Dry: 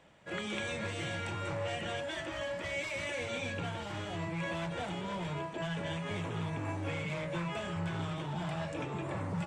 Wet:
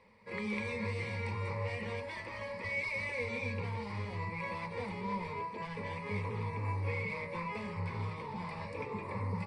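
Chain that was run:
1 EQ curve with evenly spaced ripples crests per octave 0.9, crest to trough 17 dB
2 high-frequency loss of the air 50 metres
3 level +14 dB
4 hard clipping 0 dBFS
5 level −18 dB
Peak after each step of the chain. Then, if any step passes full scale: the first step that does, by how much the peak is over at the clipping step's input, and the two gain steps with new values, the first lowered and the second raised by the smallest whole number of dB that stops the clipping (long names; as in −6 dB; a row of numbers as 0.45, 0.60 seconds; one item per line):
−18.5, −19.0, −5.0, −5.0, −23.0 dBFS
no step passes full scale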